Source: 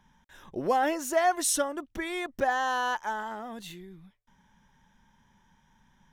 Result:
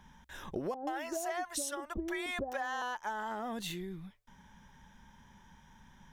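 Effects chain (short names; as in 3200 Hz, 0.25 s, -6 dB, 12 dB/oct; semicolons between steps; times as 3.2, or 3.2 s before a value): 0.74–2.82 bands offset in time lows, highs 0.13 s, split 600 Hz; compressor 10:1, threshold -39 dBFS, peak gain reduction 18 dB; bell 64 Hz +8 dB 0.27 oct; gain +5 dB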